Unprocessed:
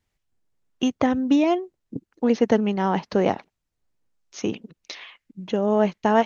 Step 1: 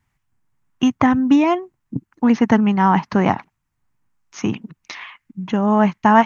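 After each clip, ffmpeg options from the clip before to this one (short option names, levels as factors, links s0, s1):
-af "equalizer=f=125:t=o:w=1:g=8,equalizer=f=250:t=o:w=1:g=3,equalizer=f=500:t=o:w=1:g=-11,equalizer=f=1000:t=o:w=1:g=9,equalizer=f=2000:t=o:w=1:g=4,equalizer=f=4000:t=o:w=1:g=-6,volume=1.58"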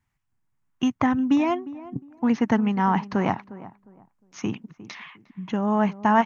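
-filter_complex "[0:a]asplit=2[s0][s1];[s1]adelay=356,lowpass=f=1100:p=1,volume=0.158,asplit=2[s2][s3];[s3]adelay=356,lowpass=f=1100:p=1,volume=0.27,asplit=2[s4][s5];[s5]adelay=356,lowpass=f=1100:p=1,volume=0.27[s6];[s0][s2][s4][s6]amix=inputs=4:normalize=0,volume=0.473"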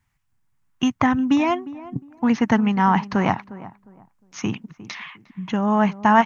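-af "equalizer=f=380:w=0.66:g=-5,volume=2"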